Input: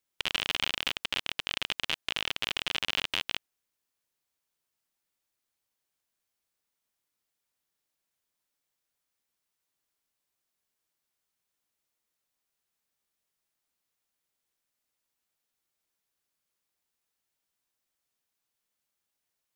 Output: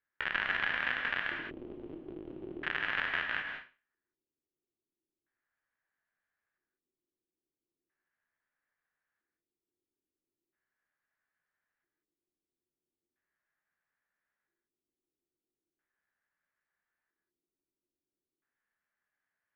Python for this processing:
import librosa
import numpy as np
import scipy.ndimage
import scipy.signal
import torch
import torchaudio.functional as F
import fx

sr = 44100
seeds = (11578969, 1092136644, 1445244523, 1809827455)

y = fx.spec_trails(x, sr, decay_s=0.32)
y = fx.filter_lfo_lowpass(y, sr, shape='square', hz=0.38, low_hz=350.0, high_hz=1700.0, q=6.1)
y = fx.rev_gated(y, sr, seeds[0], gate_ms=220, shape='rising', drr_db=3.0)
y = y * 10.0 ** (-6.5 / 20.0)